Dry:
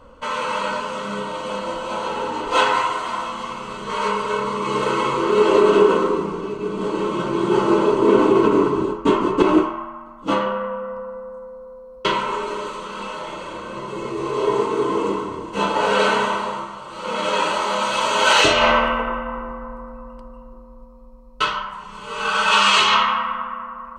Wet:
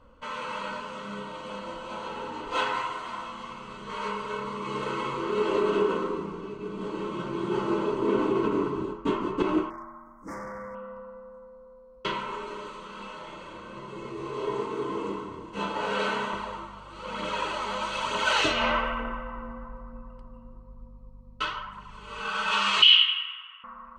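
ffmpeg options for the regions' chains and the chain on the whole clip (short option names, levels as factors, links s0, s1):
-filter_complex "[0:a]asettb=1/sr,asplit=3[s0][s1][s2];[s0]atrim=end=9.704[s3];[s1]atrim=start=9.7:end=10.75,asetpts=PTS-STARTPTS,afade=t=in:d=0.004:c=qsin,afade=t=out:st=1.046:d=0.004:c=qsin,aemphasis=mode=production:type=50fm,asoftclip=type=hard:threshold=0.0562,asuperstop=centerf=3300:order=12:qfactor=1.1[s4];[s2]atrim=start=10.746[s5];[s3][s4]acrossfade=d=0.004:c1=hsin:c2=qsin[s6];[s6][s5]acrossfade=d=0.004:c1=qsin:c2=hsin,asettb=1/sr,asplit=3[s7][s8][s9];[s7]atrim=end=16.334[s10];[s8]atrim=start=16.33:end=22.21,asetpts=PTS-STARTPTS,afade=t=in:d=0.004:c=qsin,afade=t=out:st=5.876:d=0.004:c=qsin,aphaser=in_gain=1:out_gain=1:delay=4.6:decay=0.37:speed=1.1:type=triangular,aeval=exprs='val(0)+0.00708*(sin(2*PI*50*n/s)+sin(2*PI*2*50*n/s)/2+sin(2*PI*3*50*n/s)/3+sin(2*PI*4*50*n/s)/4+sin(2*PI*5*50*n/s)/5)':c=same[s11];[s9]atrim=start=22.206[s12];[s10][s11]acrossfade=d=0.004:c1=hsin:c2=qsin[s13];[s13][s12]acrossfade=d=0.004:c1=qsin:c2=hsin,asettb=1/sr,asplit=3[s14][s15][s16];[s14]atrim=end=22.824[s17];[s15]atrim=start=22.82:end=23.64,asetpts=PTS-STARTPTS,afade=t=in:d=0.004:c=qsin,afade=t=out:st=0.816:d=0.004:c=qsin,highpass=f=3000:t=q:w=12,equalizer=f=8000:w=0.95:g=-10[s18];[s16]atrim=start=23.636[s19];[s17][s18]acrossfade=d=0.004:c1=hsin:c2=qsin[s20];[s20][s19]acrossfade=d=0.004:c1=qsin:c2=hsin,lowpass=f=3600:p=1,equalizer=f=610:w=0.61:g=-5,volume=0.447"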